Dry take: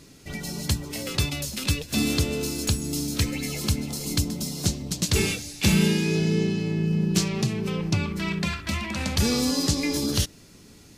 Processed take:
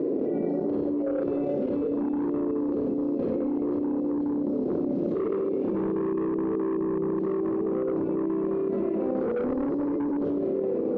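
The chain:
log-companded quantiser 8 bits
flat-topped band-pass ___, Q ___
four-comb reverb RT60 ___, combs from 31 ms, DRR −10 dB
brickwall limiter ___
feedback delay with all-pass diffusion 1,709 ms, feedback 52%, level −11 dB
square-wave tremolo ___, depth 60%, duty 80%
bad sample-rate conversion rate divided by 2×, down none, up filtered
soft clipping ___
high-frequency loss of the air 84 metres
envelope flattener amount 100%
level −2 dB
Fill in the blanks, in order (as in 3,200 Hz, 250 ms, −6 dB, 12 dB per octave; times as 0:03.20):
410 Hz, 1.7, 0.95 s, −14.5 dBFS, 4.7 Hz, −22.5 dBFS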